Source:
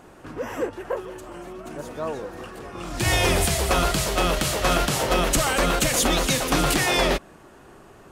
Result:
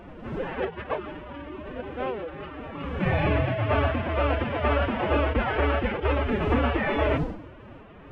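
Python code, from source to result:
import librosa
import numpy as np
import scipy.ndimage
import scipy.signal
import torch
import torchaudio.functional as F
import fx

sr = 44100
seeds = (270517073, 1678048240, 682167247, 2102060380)

y = fx.cvsd(x, sr, bps=16000)
y = fx.dmg_wind(y, sr, seeds[0], corner_hz=340.0, level_db=-37.0)
y = fx.pitch_keep_formants(y, sr, semitones=8.5)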